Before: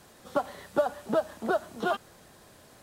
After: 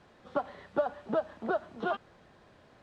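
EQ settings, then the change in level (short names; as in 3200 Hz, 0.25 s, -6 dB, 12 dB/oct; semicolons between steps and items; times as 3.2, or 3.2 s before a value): LPF 3100 Hz 12 dB/oct; -3.5 dB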